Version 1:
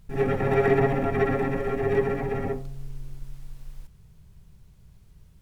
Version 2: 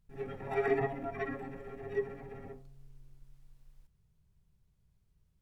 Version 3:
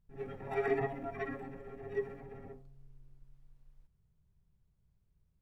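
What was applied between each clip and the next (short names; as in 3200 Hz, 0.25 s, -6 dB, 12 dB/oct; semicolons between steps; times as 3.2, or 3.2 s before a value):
spectral noise reduction 11 dB; gain -7.5 dB
mismatched tape noise reduction decoder only; gain -2 dB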